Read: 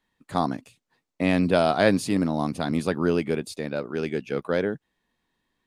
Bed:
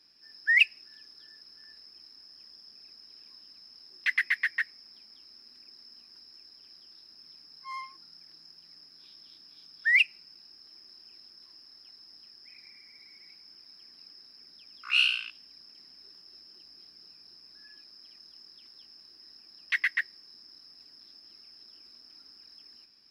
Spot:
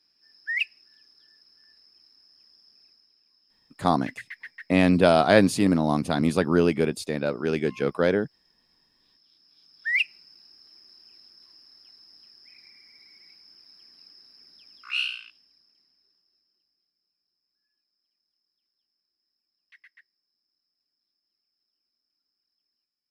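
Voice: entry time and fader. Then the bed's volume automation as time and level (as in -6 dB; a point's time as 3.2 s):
3.50 s, +2.5 dB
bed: 2.84 s -6 dB
3.17 s -13.5 dB
8.97 s -13.5 dB
10.1 s -0.5 dB
14.7 s -0.5 dB
16.99 s -27.5 dB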